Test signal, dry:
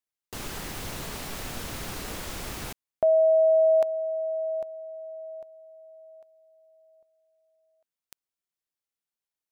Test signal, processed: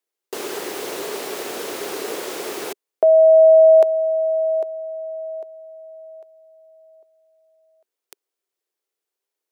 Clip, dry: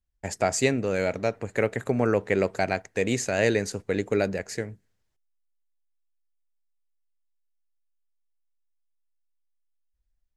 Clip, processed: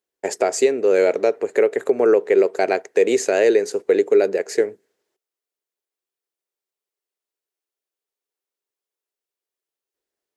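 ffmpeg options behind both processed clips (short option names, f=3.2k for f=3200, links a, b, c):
-af "highpass=f=400:t=q:w=4.1,alimiter=limit=-12dB:level=0:latency=1:release=401,volume=5.5dB"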